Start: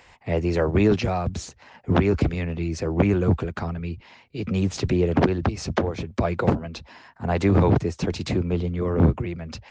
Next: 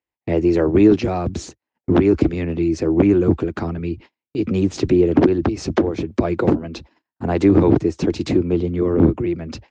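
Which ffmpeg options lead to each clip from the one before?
-filter_complex "[0:a]agate=range=-42dB:threshold=-42dB:ratio=16:detection=peak,equalizer=f=320:t=o:w=0.75:g=13,asplit=2[a][b];[b]acompressor=threshold=-21dB:ratio=6,volume=-2dB[c];[a][c]amix=inputs=2:normalize=0,volume=-3dB"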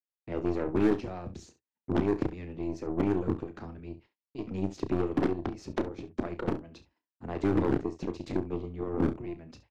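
-filter_complex "[0:a]aeval=exprs='0.891*(cos(1*acos(clip(val(0)/0.891,-1,1)))-cos(1*PI/2))+0.224*(cos(3*acos(clip(val(0)/0.891,-1,1)))-cos(3*PI/2))+0.0501*(cos(4*acos(clip(val(0)/0.891,-1,1)))-cos(4*PI/2))+0.0282*(cos(5*acos(clip(val(0)/0.891,-1,1)))-cos(5*PI/2))+0.0224*(cos(7*acos(clip(val(0)/0.891,-1,1)))-cos(7*PI/2))':c=same,asoftclip=type=hard:threshold=-11dB,asplit=2[a][b];[b]aecho=0:1:32|68:0.299|0.178[c];[a][c]amix=inputs=2:normalize=0,volume=-6.5dB"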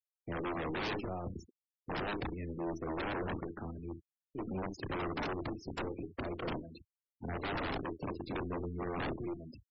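-af "aeval=exprs='0.0266*(abs(mod(val(0)/0.0266+3,4)-2)-1)':c=same,afftfilt=real='re*gte(hypot(re,im),0.00708)':imag='im*gte(hypot(re,im),0.00708)':win_size=1024:overlap=0.75,equalizer=f=6.1k:t=o:w=1.1:g=4.5"

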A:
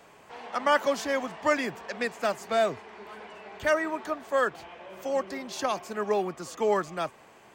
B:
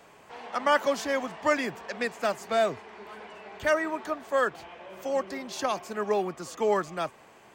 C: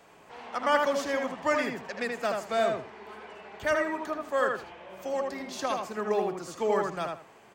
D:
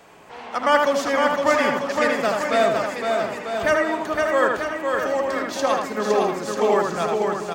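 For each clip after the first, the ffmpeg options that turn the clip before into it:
-af anull
-filter_complex "[0:a]asplit=2[a][b];[b]adelay=79,lowpass=f=3k:p=1,volume=-3dB,asplit=2[c][d];[d]adelay=79,lowpass=f=3k:p=1,volume=0.23,asplit=2[e][f];[f]adelay=79,lowpass=f=3k:p=1,volume=0.23[g];[a][c][e][g]amix=inputs=4:normalize=0,volume=-2.5dB"
-af "aecho=1:1:510|943.5|1312|1625|1891:0.631|0.398|0.251|0.158|0.1,volume=7dB"

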